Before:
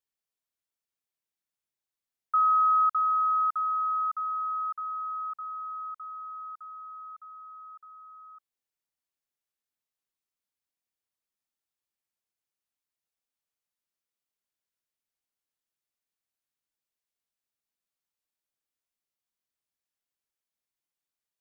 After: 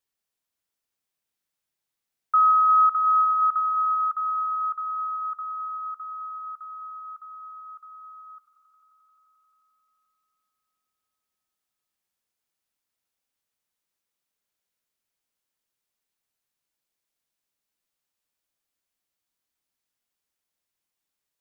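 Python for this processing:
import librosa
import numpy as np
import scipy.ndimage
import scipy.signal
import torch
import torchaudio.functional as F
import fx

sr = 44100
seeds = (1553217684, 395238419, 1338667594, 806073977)

y = fx.echo_swell(x, sr, ms=88, loudest=5, wet_db=-15.0)
y = y * librosa.db_to_amplitude(5.0)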